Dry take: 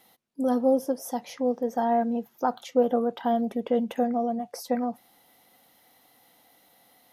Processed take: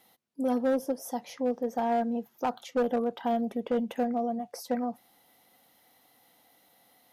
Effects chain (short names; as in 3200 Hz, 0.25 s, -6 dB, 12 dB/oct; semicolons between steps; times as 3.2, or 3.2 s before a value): one-sided clip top -20.5 dBFS, bottom -16 dBFS; gain -3 dB